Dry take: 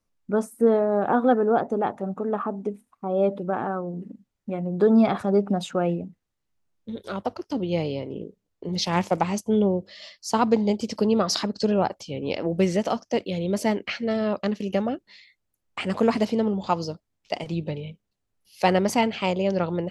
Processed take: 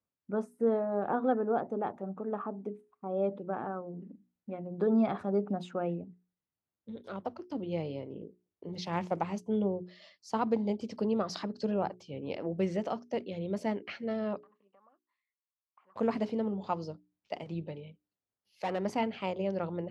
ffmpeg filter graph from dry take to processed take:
-filter_complex "[0:a]asettb=1/sr,asplit=3[a][b][c];[a]atrim=end=14.434[d];[b]atrim=start=14.43:end=15.96,asetpts=PTS-STARTPTS,afade=t=in:d=0.004:c=qsin,afade=t=out:st=1.526:d=0.004:c=qsin,bandpass=f=1.1k:t=q:w=11,acompressor=threshold=-52dB:ratio=3:attack=3.2:release=140:knee=1:detection=peak[e];[c]atrim=start=15.956[f];[d][e]acrossfade=d=0.004:c1=hsin:c2=qsin[g];[g][f]acrossfade=d=0.004:c1=qsin:c2=hsin,asettb=1/sr,asplit=3[h][i][j];[h]atrim=end=17.674[k];[i]atrim=start=17.67:end=18.85,asetpts=PTS-STARTPTS,afade=t=in:d=0.004:c=qsin,afade=t=out:st=1.176:d=0.004:c=qsin,lowshelf=f=160:g=-7.5,asoftclip=type=hard:threshold=-19.5dB[l];[j]atrim=start=18.846[m];[k][l]acrossfade=d=0.004:c1=hsin:c2=qsin[n];[n][m]acrossfade=d=0.004:c1=qsin:c2=hsin,highpass=76,aemphasis=mode=reproduction:type=75kf,bandreject=f=60:t=h:w=6,bandreject=f=120:t=h:w=6,bandreject=f=180:t=h:w=6,bandreject=f=240:t=h:w=6,bandreject=f=300:t=h:w=6,bandreject=f=360:t=h:w=6,bandreject=f=420:t=h:w=6,volume=-8.5dB"

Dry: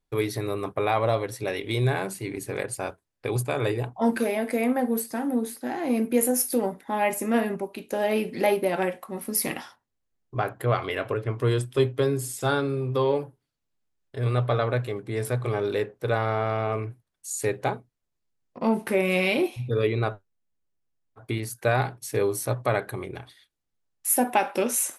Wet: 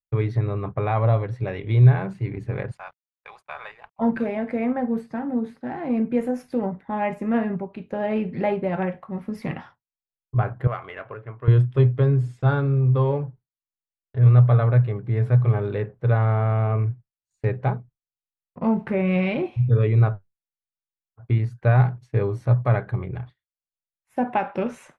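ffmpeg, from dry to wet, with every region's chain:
-filter_complex "[0:a]asettb=1/sr,asplit=3[a][b][c];[a]atrim=end=2.714[d];[b]atrim=start=2.71:end=3.99,asetpts=PTS-STARTPTS,afade=t=in:d=0.004:c=qsin,afade=t=out:st=1.276:d=0.004:c=qsin,highpass=f=830:w=0.5412,highpass=f=830:w=1.3066,aeval=exprs='sgn(val(0))*max(abs(val(0))-0.00237,0)':c=same[e];[c]atrim=start=3.986[f];[d][e]acrossfade=d=0.004:c1=hsin:c2=qsin[g];[g][f]acrossfade=d=0.004:c1=qsin:c2=hsin,asettb=1/sr,asplit=3[h][i][j];[h]atrim=end=10.674[k];[i]atrim=start=10.67:end=11.48,asetpts=PTS-STARTPTS,afade=t=in:d=0.004:c=qsin,afade=t=out:st=0.806:d=0.004:c=qsin,highpass=f=1.1k:p=1,adynamicsmooth=sensitivity=2.5:basefreq=2.4k,highshelf=f=8.5k:g=-6[l];[j]atrim=start=11.476[m];[k][l]acrossfade=d=0.004:c1=hsin:c2=qsin[n];[n][m]acrossfade=d=0.004:c1=qsin:c2=hsin,lowpass=1.9k,agate=range=-33dB:threshold=-43dB:ratio=3:detection=peak,lowshelf=f=210:t=q:w=1.5:g=9.5"

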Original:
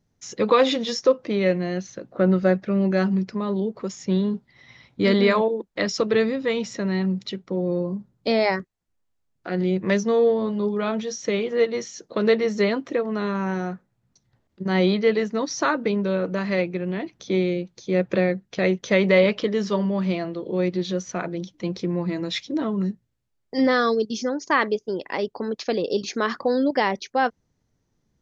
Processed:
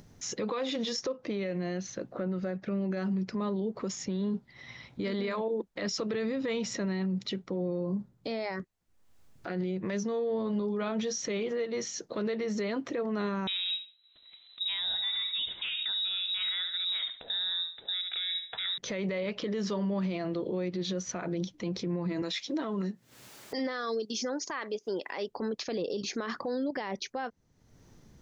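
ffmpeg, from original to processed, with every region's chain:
-filter_complex "[0:a]asettb=1/sr,asplit=3[a][b][c];[a]atrim=end=13.474[d];[b]atrim=start=13.47:end=18.78,asetpts=PTS-STARTPTS,afade=t=in:d=0.004:c=qsin,afade=t=out:st=5.306:d=0.004:c=qsin,aecho=1:1:71|142|213:0.211|0.055|0.0143,atrim=end_sample=234171,lowpass=f=3.4k:t=q:w=0.5098,lowpass=f=3.4k:t=q:w=0.6013,lowpass=f=3.4k:t=q:w=0.9,lowpass=f=3.4k:t=q:w=2.563,afreqshift=-4000[e];[c]atrim=start=18.776[f];[d][e]acrossfade=d=0.004:c1=hsin:c2=qsin[g];[g][f]acrossfade=d=0.004:c1=qsin:c2=hsin,asettb=1/sr,asplit=3[h][i][j];[h]atrim=end=22.224[k];[i]atrim=start=22.22:end=25.29,asetpts=PTS-STARTPTS,afade=t=in:d=0.004:c=qsin,afade=t=out:st=3.066:d=0.004:c=qsin,highpass=180,lowshelf=f=470:g=-8,acompressor=mode=upward:threshold=-32dB:ratio=2.5:attack=3.2:release=140:knee=2.83:detection=peak[l];[j]atrim=start=25.286[m];[k][l]acrossfade=d=0.004:c1=hsin:c2=qsin[n];[n][m]acrossfade=d=0.004:c1=qsin:c2=hsin,acompressor=threshold=-25dB:ratio=6,alimiter=level_in=2dB:limit=-24dB:level=0:latency=1:release=39,volume=-2dB,acompressor=mode=upward:threshold=-44dB:ratio=2.5,volume=1dB"

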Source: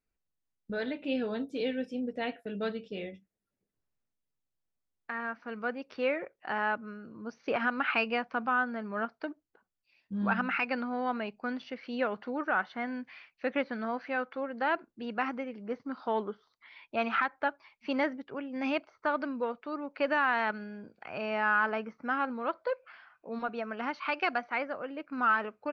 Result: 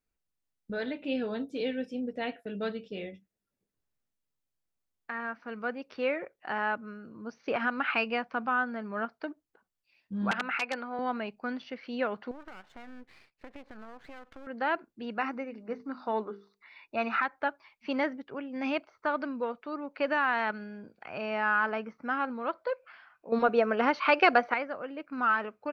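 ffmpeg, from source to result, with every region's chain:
-filter_complex "[0:a]asettb=1/sr,asplit=3[a][b][c];[a]atrim=end=10.314[d];[b]atrim=start=10.31:end=10.99,asetpts=PTS-STARTPTS,afade=t=in:d=0.004:c=qsin,afade=t=out:st=0.676:d=0.004:c=qsin,aeval=exprs='(mod(9.44*val(0)+1,2)-1)/9.44':c=same,highpass=360,lowpass=4k[e];[c]atrim=start=10.986[f];[d][e]acrossfade=d=0.004:c1=hsin:c2=qsin[g];[g][f]acrossfade=d=0.004:c1=qsin:c2=hsin,asettb=1/sr,asplit=3[h][i][j];[h]atrim=end=12.314[k];[i]atrim=start=12.31:end=14.47,asetpts=PTS-STARTPTS,afade=t=in:d=0.004:c=qsin,afade=t=out:st=2.156:d=0.004:c=qsin,lowpass=f=1.9k:p=1,acompressor=threshold=-39dB:ratio=16:attack=3.2:release=140:knee=1:detection=peak,aeval=exprs='max(val(0),0)':c=same[l];[j]atrim=start=14.466[m];[k][l]acrossfade=d=0.004:c1=hsin:c2=qsin[n];[n][m]acrossfade=d=0.004:c1=qsin:c2=hsin,asettb=1/sr,asplit=3[o][p][q];[o]atrim=end=15.184[r];[p]atrim=start=15.18:end=17.23,asetpts=PTS-STARTPTS,afade=t=in:d=0.004:c=qsin,afade=t=out:st=2.046:d=0.004:c=qsin,asuperstop=centerf=3200:order=12:qfactor=7.7,bandreject=f=50:t=h:w=6,bandreject=f=100:t=h:w=6,bandreject=f=150:t=h:w=6,bandreject=f=200:t=h:w=6,bandreject=f=250:t=h:w=6,bandreject=f=300:t=h:w=6,bandreject=f=350:t=h:w=6,bandreject=f=400:t=h:w=6,bandreject=f=450:t=h:w=6[s];[q]atrim=start=17.226[t];[r][s]acrossfade=d=0.004:c1=hsin:c2=qsin[u];[u][t]acrossfade=d=0.004:c1=qsin:c2=hsin,asettb=1/sr,asplit=3[v][w][x];[v]atrim=end=23.324[y];[w]atrim=start=23.32:end=24.54,asetpts=PTS-STARTPTS,afade=t=in:d=0.004:c=qsin,afade=t=out:st=1.216:d=0.004:c=qsin,acontrast=88,equalizer=f=490:t=o:w=0.63:g=7.5[z];[x]atrim=start=24.536[aa];[y][z]acrossfade=d=0.004:c1=hsin:c2=qsin[ab];[ab][aa]acrossfade=d=0.004:c1=qsin:c2=hsin"

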